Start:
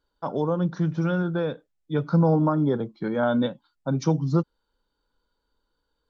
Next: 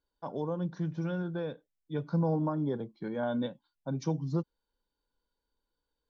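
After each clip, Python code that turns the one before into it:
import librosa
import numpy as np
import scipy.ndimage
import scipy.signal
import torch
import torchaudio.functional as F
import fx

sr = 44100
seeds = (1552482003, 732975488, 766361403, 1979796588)

y = fx.notch(x, sr, hz=1300.0, q=5.3)
y = y * 10.0 ** (-9.0 / 20.0)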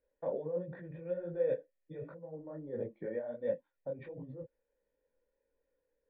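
y = fx.over_compress(x, sr, threshold_db=-39.0, ratio=-1.0)
y = fx.formant_cascade(y, sr, vowel='e')
y = fx.detune_double(y, sr, cents=49)
y = y * 10.0 ** (14.5 / 20.0)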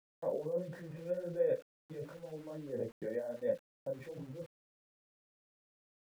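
y = np.where(np.abs(x) >= 10.0 ** (-55.0 / 20.0), x, 0.0)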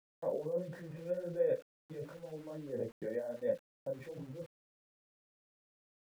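y = x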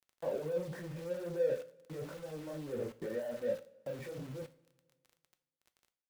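y = x + 0.5 * 10.0 ** (-42.5 / 20.0) * np.sign(x)
y = fx.dmg_crackle(y, sr, seeds[0], per_s=19.0, level_db=-48.0)
y = fx.rev_double_slope(y, sr, seeds[1], early_s=0.38, late_s=1.8, knee_db=-18, drr_db=10.0)
y = y * 10.0 ** (-1.5 / 20.0)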